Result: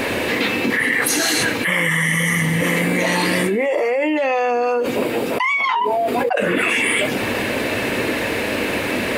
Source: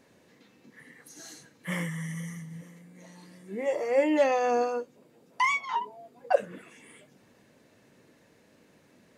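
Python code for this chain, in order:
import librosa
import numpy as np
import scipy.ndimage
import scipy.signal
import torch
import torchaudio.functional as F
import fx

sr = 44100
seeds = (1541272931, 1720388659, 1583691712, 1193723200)

y = fx.graphic_eq_15(x, sr, hz=(160, 2500, 6300), db=(-12, 7, -9))
y = fx.env_flatten(y, sr, amount_pct=100)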